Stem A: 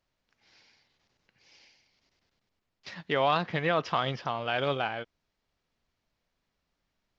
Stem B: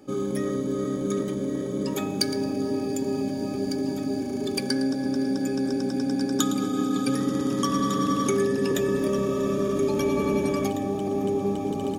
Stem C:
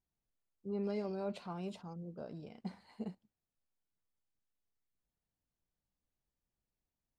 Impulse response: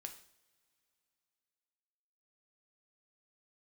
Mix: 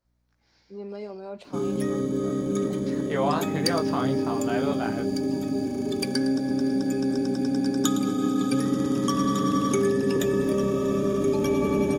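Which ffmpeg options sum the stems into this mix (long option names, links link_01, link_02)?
-filter_complex "[0:a]flanger=delay=16.5:depth=5.8:speed=0.38,equalizer=frequency=2800:width=1.8:gain=-9,volume=2dB[link_01];[1:a]bandreject=frequency=4300:width=24,adelay=1450,volume=-1dB[link_02];[2:a]highpass=290,aeval=exprs='val(0)+0.000178*(sin(2*PI*60*n/s)+sin(2*PI*2*60*n/s)/2+sin(2*PI*3*60*n/s)/3+sin(2*PI*4*60*n/s)/4+sin(2*PI*5*60*n/s)/5)':channel_layout=same,adelay=50,volume=0.5dB,asplit=2[link_03][link_04];[link_04]volume=-9dB[link_05];[3:a]atrim=start_sample=2205[link_06];[link_05][link_06]afir=irnorm=-1:irlink=0[link_07];[link_01][link_02][link_03][link_07]amix=inputs=4:normalize=0,lowshelf=frequency=370:gain=3"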